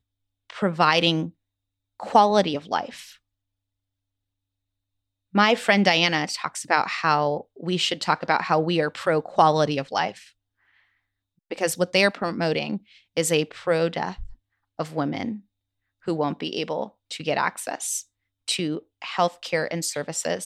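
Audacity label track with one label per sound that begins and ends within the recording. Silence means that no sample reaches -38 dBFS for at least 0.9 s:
5.340000	10.230000	sound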